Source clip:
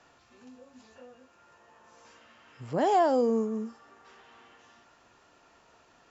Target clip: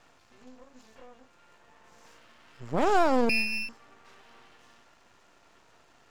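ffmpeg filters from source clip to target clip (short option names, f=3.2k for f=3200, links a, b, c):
-filter_complex "[0:a]asettb=1/sr,asplit=3[a][b][c];[a]atrim=end=3.294[d];[b]atrim=start=3.29:end=3.69,asetpts=PTS-STARTPTS,afade=t=in:d=0.004:c=qsin,afade=t=out:st=0.396:d=0.004:c=qsin,lowpass=f=2.5k:t=q:w=0.5098,lowpass=f=2.5k:t=q:w=0.6013,lowpass=f=2.5k:t=q:w=0.9,lowpass=f=2.5k:t=q:w=2.563,afreqshift=-2900[e];[c]atrim=start=3.686[f];[d][e]acrossfade=d=0.004:c1=hsin:c2=qsin[g];[g][f]acrossfade=d=0.004:c1=qsin:c2=hsin,aeval=exprs='max(val(0),0)':c=same,volume=4dB"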